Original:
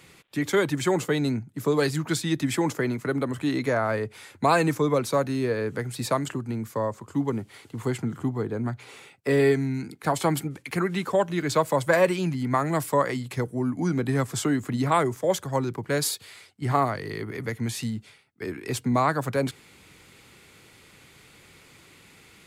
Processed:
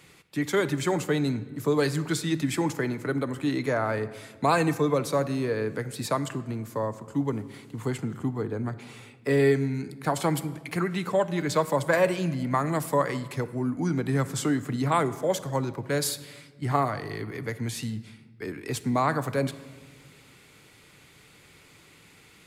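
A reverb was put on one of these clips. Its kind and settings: simulated room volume 1500 m³, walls mixed, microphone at 0.41 m; trim -2 dB

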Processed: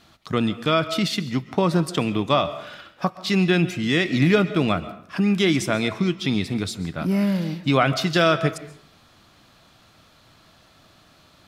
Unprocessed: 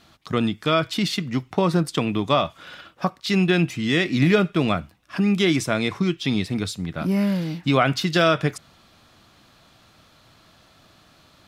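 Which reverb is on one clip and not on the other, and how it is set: algorithmic reverb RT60 0.64 s, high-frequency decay 0.65×, pre-delay 95 ms, DRR 14.5 dB

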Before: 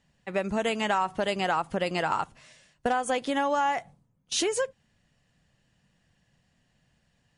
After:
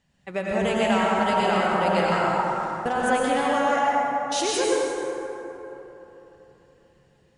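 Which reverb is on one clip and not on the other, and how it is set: plate-style reverb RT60 3.6 s, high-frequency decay 0.4×, pre-delay 85 ms, DRR -5.5 dB; trim -1 dB

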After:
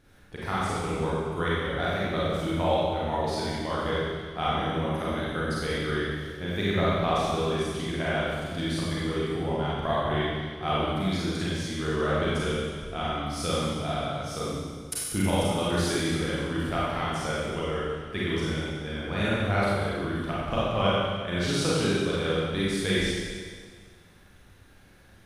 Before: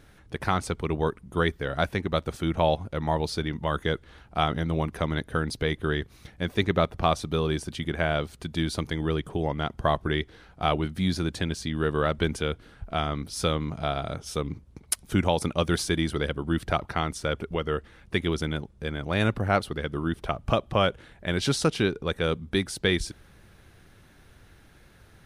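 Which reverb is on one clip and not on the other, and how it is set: Schroeder reverb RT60 1.7 s, combs from 31 ms, DRR -8 dB; trim -8.5 dB

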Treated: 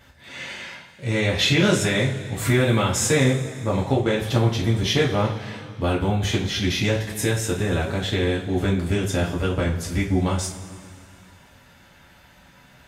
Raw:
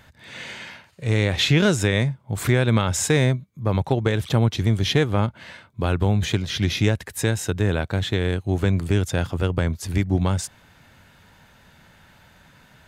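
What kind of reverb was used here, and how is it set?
two-slope reverb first 0.31 s, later 2.4 s, from -18 dB, DRR -5 dB; trim -4.5 dB

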